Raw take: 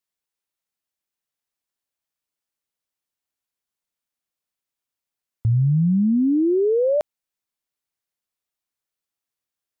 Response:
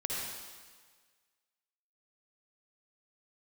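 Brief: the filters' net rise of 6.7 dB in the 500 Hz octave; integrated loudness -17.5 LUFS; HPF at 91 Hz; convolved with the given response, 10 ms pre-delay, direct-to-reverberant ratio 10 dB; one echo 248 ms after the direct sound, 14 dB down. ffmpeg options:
-filter_complex "[0:a]highpass=91,equalizer=f=500:t=o:g=8,aecho=1:1:248:0.2,asplit=2[s0][s1];[1:a]atrim=start_sample=2205,adelay=10[s2];[s1][s2]afir=irnorm=-1:irlink=0,volume=0.188[s3];[s0][s3]amix=inputs=2:normalize=0,volume=0.794"

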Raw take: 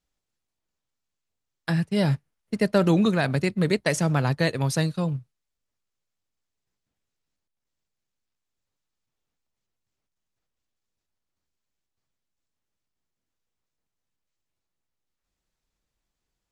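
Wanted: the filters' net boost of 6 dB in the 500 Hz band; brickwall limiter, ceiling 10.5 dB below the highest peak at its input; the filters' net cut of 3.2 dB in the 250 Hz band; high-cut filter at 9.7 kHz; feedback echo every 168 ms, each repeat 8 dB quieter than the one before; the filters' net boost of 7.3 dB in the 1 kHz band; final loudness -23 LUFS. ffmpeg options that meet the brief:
-af "lowpass=9700,equalizer=f=250:t=o:g=-8,equalizer=f=500:t=o:g=7.5,equalizer=f=1000:t=o:g=7.5,alimiter=limit=0.2:level=0:latency=1,aecho=1:1:168|336|504|672|840:0.398|0.159|0.0637|0.0255|0.0102,volume=1.33"

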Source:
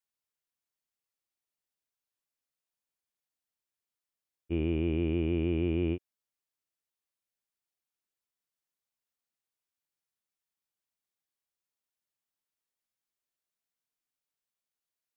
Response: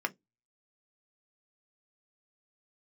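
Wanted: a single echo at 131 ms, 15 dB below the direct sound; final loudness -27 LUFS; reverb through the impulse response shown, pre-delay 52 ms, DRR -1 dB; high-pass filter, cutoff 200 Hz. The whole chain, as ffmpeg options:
-filter_complex "[0:a]highpass=200,aecho=1:1:131:0.178,asplit=2[s0][s1];[1:a]atrim=start_sample=2205,adelay=52[s2];[s1][s2]afir=irnorm=-1:irlink=0,volume=0.562[s3];[s0][s3]amix=inputs=2:normalize=0,volume=1.33"

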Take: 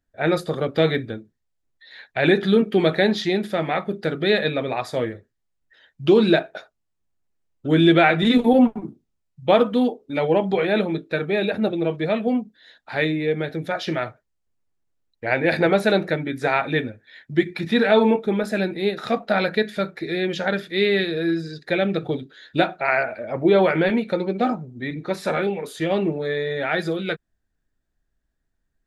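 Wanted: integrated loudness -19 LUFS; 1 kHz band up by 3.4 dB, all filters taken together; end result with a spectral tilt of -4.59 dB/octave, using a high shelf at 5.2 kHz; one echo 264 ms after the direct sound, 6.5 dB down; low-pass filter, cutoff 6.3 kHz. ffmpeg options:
-af "lowpass=6300,equalizer=f=1000:t=o:g=5.5,highshelf=f=5200:g=-8.5,aecho=1:1:264:0.473,volume=1.12"

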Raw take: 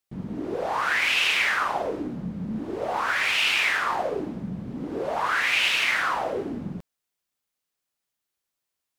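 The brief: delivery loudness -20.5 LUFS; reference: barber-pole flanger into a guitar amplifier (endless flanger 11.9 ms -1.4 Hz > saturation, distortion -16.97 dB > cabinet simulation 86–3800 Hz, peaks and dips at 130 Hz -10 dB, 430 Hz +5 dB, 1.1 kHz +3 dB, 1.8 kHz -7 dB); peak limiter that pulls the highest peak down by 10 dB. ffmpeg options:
-filter_complex "[0:a]alimiter=limit=0.1:level=0:latency=1,asplit=2[s0][s1];[s1]adelay=11.9,afreqshift=-1.4[s2];[s0][s2]amix=inputs=2:normalize=1,asoftclip=threshold=0.0447,highpass=86,equalizer=f=130:t=q:w=4:g=-10,equalizer=f=430:t=q:w=4:g=5,equalizer=f=1100:t=q:w=4:g=3,equalizer=f=1800:t=q:w=4:g=-7,lowpass=f=3800:w=0.5412,lowpass=f=3800:w=1.3066,volume=4.73"

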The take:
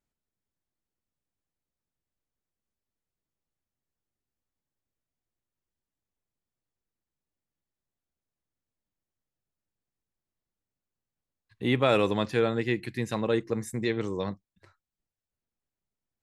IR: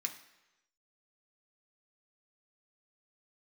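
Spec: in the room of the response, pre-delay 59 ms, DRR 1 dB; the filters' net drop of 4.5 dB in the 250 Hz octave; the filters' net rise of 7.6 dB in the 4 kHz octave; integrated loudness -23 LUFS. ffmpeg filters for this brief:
-filter_complex "[0:a]equalizer=f=250:t=o:g=-6,equalizer=f=4000:t=o:g=9,asplit=2[s0][s1];[1:a]atrim=start_sample=2205,adelay=59[s2];[s1][s2]afir=irnorm=-1:irlink=0,volume=0.891[s3];[s0][s3]amix=inputs=2:normalize=0,volume=1.5"

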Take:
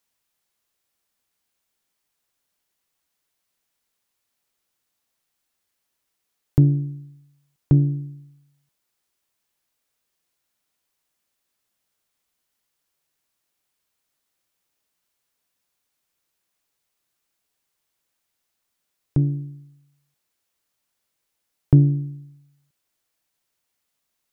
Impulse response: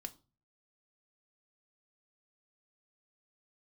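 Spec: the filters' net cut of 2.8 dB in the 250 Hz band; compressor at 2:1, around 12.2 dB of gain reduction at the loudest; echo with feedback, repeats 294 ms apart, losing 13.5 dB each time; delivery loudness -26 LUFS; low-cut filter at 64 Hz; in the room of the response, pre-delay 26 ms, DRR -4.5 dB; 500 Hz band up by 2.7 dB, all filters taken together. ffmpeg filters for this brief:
-filter_complex "[0:a]highpass=64,equalizer=f=250:t=o:g=-8,equalizer=f=500:t=o:g=8.5,acompressor=threshold=0.02:ratio=2,aecho=1:1:294|588:0.211|0.0444,asplit=2[s0][s1];[1:a]atrim=start_sample=2205,adelay=26[s2];[s1][s2]afir=irnorm=-1:irlink=0,volume=2.66[s3];[s0][s3]amix=inputs=2:normalize=0,volume=2.51"

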